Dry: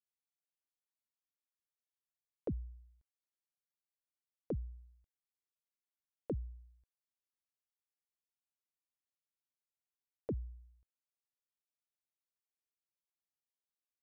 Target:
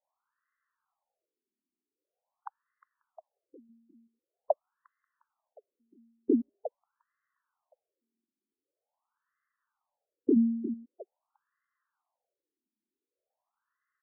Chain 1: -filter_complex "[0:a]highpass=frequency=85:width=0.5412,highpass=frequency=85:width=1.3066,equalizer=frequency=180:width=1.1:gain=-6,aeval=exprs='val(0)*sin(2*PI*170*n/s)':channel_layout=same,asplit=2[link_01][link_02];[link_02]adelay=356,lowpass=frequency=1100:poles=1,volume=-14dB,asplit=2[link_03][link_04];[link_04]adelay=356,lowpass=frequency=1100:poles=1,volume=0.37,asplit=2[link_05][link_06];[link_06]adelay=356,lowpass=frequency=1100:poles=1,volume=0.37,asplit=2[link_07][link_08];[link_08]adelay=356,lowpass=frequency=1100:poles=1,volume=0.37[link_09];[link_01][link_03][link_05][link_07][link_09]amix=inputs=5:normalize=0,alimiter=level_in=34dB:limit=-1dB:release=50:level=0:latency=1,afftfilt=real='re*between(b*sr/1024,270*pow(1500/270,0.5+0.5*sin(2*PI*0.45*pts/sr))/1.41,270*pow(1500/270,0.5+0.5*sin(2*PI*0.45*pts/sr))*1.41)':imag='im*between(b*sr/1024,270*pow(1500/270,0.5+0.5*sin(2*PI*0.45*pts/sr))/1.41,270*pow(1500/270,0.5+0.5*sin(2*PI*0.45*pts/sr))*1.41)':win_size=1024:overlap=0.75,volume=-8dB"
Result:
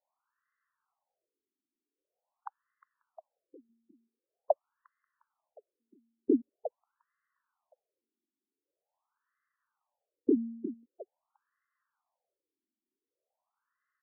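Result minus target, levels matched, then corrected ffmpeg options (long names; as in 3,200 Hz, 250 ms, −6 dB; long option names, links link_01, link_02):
125 Hz band −8.0 dB
-filter_complex "[0:a]equalizer=frequency=180:width=1.1:gain=-6,aeval=exprs='val(0)*sin(2*PI*170*n/s)':channel_layout=same,asplit=2[link_01][link_02];[link_02]adelay=356,lowpass=frequency=1100:poles=1,volume=-14dB,asplit=2[link_03][link_04];[link_04]adelay=356,lowpass=frequency=1100:poles=1,volume=0.37,asplit=2[link_05][link_06];[link_06]adelay=356,lowpass=frequency=1100:poles=1,volume=0.37,asplit=2[link_07][link_08];[link_08]adelay=356,lowpass=frequency=1100:poles=1,volume=0.37[link_09];[link_01][link_03][link_05][link_07][link_09]amix=inputs=5:normalize=0,alimiter=level_in=34dB:limit=-1dB:release=50:level=0:latency=1,afftfilt=real='re*between(b*sr/1024,270*pow(1500/270,0.5+0.5*sin(2*PI*0.45*pts/sr))/1.41,270*pow(1500/270,0.5+0.5*sin(2*PI*0.45*pts/sr))*1.41)':imag='im*between(b*sr/1024,270*pow(1500/270,0.5+0.5*sin(2*PI*0.45*pts/sr))/1.41,270*pow(1500/270,0.5+0.5*sin(2*PI*0.45*pts/sr))*1.41)':win_size=1024:overlap=0.75,volume=-8dB"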